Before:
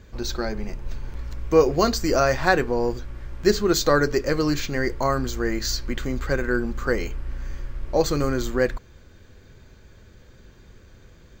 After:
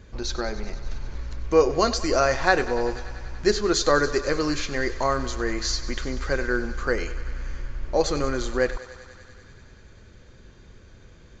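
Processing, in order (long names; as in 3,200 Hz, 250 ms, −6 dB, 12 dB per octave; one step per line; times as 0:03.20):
dynamic equaliser 160 Hz, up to −7 dB, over −38 dBFS, Q 0.81
on a send: feedback echo with a high-pass in the loop 96 ms, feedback 83%, high-pass 360 Hz, level −15.5 dB
on the sum: downsampling to 16,000 Hz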